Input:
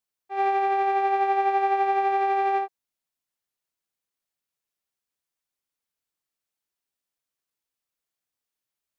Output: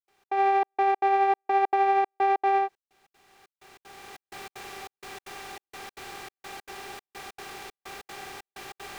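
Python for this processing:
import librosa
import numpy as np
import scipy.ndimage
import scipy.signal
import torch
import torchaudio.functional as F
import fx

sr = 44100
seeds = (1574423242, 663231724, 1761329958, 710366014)

y = fx.bin_compress(x, sr, power=0.6)
y = fx.recorder_agc(y, sr, target_db=-20.0, rise_db_per_s=18.0, max_gain_db=30)
y = fx.step_gate(y, sr, bpm=191, pattern='.xx.xxxx.', floor_db=-60.0, edge_ms=4.5)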